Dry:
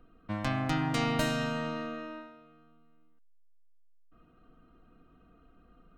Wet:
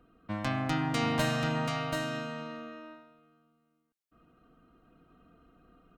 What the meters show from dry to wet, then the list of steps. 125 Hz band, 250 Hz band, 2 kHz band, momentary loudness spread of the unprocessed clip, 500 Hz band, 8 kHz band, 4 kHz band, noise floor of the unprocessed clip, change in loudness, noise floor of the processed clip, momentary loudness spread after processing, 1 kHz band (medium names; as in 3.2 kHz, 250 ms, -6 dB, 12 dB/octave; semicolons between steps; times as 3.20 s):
+1.0 dB, 0.0 dB, +1.5 dB, 14 LU, +1.5 dB, +1.5 dB, +1.5 dB, -62 dBFS, 0.0 dB, -76 dBFS, 15 LU, +1.5 dB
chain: high-pass 67 Hz 6 dB/octave; delay 734 ms -4.5 dB